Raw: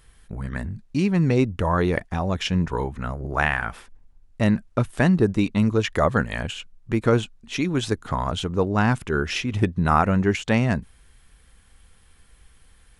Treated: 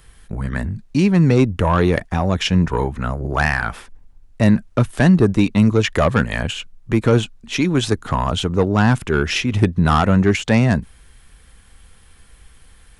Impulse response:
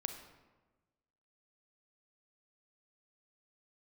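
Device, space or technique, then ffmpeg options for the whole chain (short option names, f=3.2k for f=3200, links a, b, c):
one-band saturation: -filter_complex "[0:a]acrossover=split=220|3600[a][b][c];[b]asoftclip=type=tanh:threshold=-16dB[d];[a][d][c]amix=inputs=3:normalize=0,volume=6.5dB"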